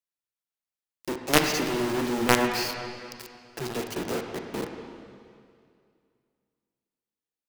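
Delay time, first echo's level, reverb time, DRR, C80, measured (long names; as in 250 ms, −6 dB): no echo audible, no echo audible, 2.3 s, 4.0 dB, 5.5 dB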